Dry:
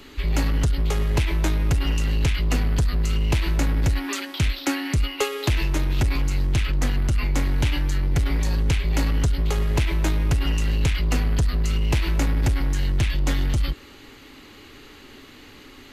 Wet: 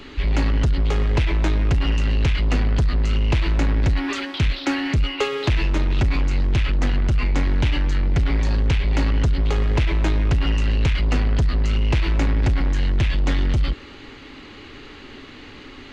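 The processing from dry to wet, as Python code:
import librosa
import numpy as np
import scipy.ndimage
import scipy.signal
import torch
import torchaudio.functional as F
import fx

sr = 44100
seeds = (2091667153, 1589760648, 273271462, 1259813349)

p1 = fx.high_shelf(x, sr, hz=2200.0, db=11.5)
p2 = 10.0 ** (-23.5 / 20.0) * (np.abs((p1 / 10.0 ** (-23.5 / 20.0) + 3.0) % 4.0 - 2.0) - 1.0)
p3 = p1 + (p2 * 10.0 ** (-6.0 / 20.0))
p4 = fx.spacing_loss(p3, sr, db_at_10k=30)
y = p4 * 10.0 ** (2.5 / 20.0)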